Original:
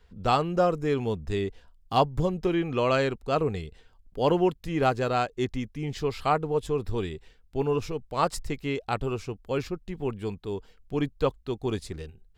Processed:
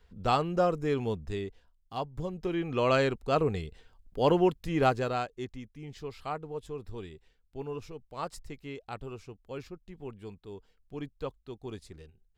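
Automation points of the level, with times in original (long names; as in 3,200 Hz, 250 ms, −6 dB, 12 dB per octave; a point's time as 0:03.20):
0:01.11 −3 dB
0:01.93 −13.5 dB
0:02.91 −1 dB
0:04.87 −1 dB
0:05.53 −11.5 dB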